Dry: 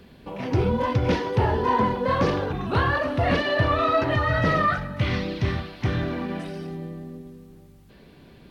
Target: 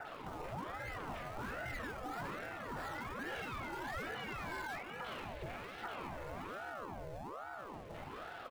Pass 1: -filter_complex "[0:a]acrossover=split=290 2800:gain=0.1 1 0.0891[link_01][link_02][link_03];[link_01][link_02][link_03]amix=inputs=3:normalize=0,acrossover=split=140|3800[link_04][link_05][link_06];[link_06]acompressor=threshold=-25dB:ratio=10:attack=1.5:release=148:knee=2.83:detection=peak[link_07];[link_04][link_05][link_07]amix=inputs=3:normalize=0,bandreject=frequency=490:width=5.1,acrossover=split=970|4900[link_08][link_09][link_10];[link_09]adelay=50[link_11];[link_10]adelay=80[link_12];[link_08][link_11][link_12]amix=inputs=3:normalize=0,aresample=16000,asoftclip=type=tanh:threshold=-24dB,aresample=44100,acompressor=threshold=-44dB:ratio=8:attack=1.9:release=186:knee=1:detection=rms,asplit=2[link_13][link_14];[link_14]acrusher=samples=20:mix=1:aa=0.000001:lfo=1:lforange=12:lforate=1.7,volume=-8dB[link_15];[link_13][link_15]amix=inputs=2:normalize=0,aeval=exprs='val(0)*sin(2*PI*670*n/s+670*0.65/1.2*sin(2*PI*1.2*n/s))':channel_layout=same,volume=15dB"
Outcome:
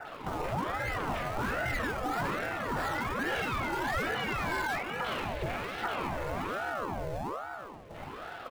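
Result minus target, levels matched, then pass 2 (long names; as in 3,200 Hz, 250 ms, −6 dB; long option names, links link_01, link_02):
downward compressor: peak gain reduction −10.5 dB
-filter_complex "[0:a]acrossover=split=290 2800:gain=0.1 1 0.0891[link_01][link_02][link_03];[link_01][link_02][link_03]amix=inputs=3:normalize=0,acrossover=split=140|3800[link_04][link_05][link_06];[link_06]acompressor=threshold=-25dB:ratio=10:attack=1.5:release=148:knee=2.83:detection=peak[link_07];[link_04][link_05][link_07]amix=inputs=3:normalize=0,bandreject=frequency=490:width=5.1,acrossover=split=970|4900[link_08][link_09][link_10];[link_09]adelay=50[link_11];[link_10]adelay=80[link_12];[link_08][link_11][link_12]amix=inputs=3:normalize=0,aresample=16000,asoftclip=type=tanh:threshold=-24dB,aresample=44100,acompressor=threshold=-56dB:ratio=8:attack=1.9:release=186:knee=1:detection=rms,asplit=2[link_13][link_14];[link_14]acrusher=samples=20:mix=1:aa=0.000001:lfo=1:lforange=12:lforate=1.7,volume=-8dB[link_15];[link_13][link_15]amix=inputs=2:normalize=0,aeval=exprs='val(0)*sin(2*PI*670*n/s+670*0.65/1.2*sin(2*PI*1.2*n/s))':channel_layout=same,volume=15dB"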